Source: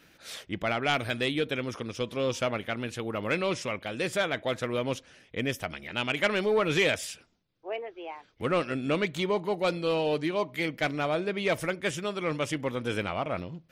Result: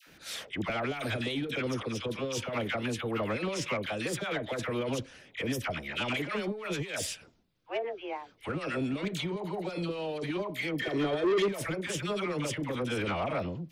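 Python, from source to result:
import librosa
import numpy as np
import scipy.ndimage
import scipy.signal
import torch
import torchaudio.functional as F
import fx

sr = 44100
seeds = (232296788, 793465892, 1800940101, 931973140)

y = fx.over_compress(x, sr, threshold_db=-30.0, ratio=-0.5)
y = fx.small_body(y, sr, hz=(390.0, 1800.0, 3200.0), ring_ms=45, db=17, at=(10.75, 11.42))
y = fx.dispersion(y, sr, late='lows', ms=73.0, hz=910.0)
y = 10.0 ** (-23.0 / 20.0) * np.tanh(y / 10.0 ** (-23.0 / 20.0))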